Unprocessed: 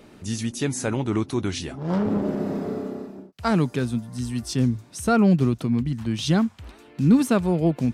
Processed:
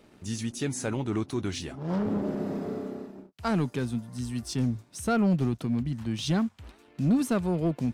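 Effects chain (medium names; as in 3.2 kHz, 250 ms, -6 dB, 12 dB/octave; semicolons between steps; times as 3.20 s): waveshaping leveller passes 1; trim -8.5 dB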